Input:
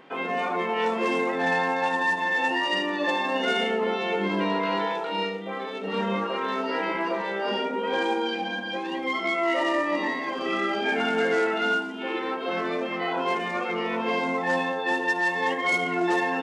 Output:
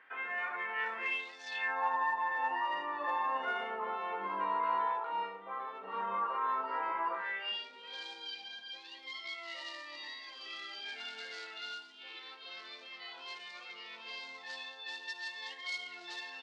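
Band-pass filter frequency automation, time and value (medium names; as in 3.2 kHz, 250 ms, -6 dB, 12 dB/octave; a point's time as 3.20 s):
band-pass filter, Q 3.7
0.99 s 1.7 kHz
1.43 s 6.2 kHz
1.78 s 1.1 kHz
7.10 s 1.1 kHz
7.65 s 4.3 kHz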